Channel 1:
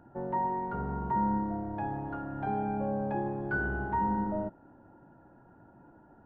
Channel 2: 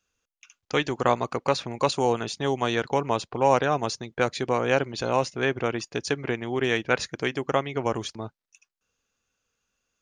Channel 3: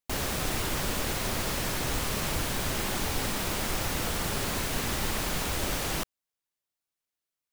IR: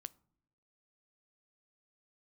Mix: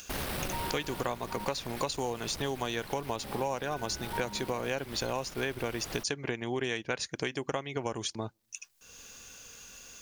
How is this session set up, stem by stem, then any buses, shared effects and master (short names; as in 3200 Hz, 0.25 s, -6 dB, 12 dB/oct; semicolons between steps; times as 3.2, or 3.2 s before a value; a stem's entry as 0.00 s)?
-6.0 dB, 0.20 s, muted 1.45–3.24, no send, dry
+1.0 dB, 0.00 s, send -19 dB, high shelf 4500 Hz +10.5 dB; notch 1300 Hz, Q 11; upward compressor, threshold -32 dBFS
+1.5 dB, 0.00 s, no send, bell 6800 Hz -12 dB 0.43 oct; tube stage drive 26 dB, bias 0.5; auto duck -6 dB, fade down 1.70 s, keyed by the second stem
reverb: on, pre-delay 9 ms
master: compressor 6:1, threshold -30 dBFS, peak gain reduction 16.5 dB